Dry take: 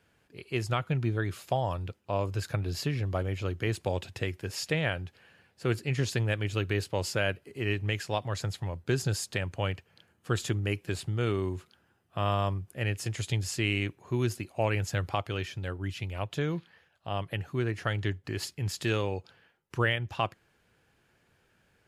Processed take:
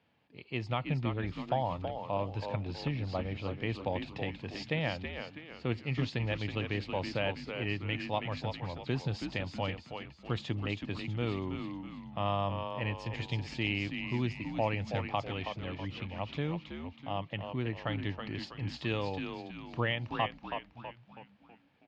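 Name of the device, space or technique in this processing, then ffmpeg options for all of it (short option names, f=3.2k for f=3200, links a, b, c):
frequency-shifting delay pedal into a guitar cabinet: -filter_complex "[0:a]asplit=6[a][b][c][d][e][f];[b]adelay=324,afreqshift=-80,volume=-6dB[g];[c]adelay=648,afreqshift=-160,volume=-12.9dB[h];[d]adelay=972,afreqshift=-240,volume=-19.9dB[i];[e]adelay=1296,afreqshift=-320,volume=-26.8dB[j];[f]adelay=1620,afreqshift=-400,volume=-33.7dB[k];[a][g][h][i][j][k]amix=inputs=6:normalize=0,highpass=110,equalizer=f=250:t=q:w=4:g=3,equalizer=f=390:t=q:w=4:g=-7,equalizer=f=870:t=q:w=4:g=4,equalizer=f=1.5k:t=q:w=4:g=-10,lowpass=f=4.2k:w=0.5412,lowpass=f=4.2k:w=1.3066,volume=-2.5dB"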